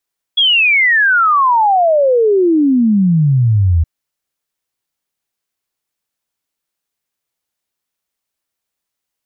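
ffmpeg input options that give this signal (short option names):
-f lavfi -i "aevalsrc='0.398*clip(min(t,3.47-t)/0.01,0,1)*sin(2*PI*3400*3.47/log(78/3400)*(exp(log(78/3400)*t/3.47)-1))':d=3.47:s=44100"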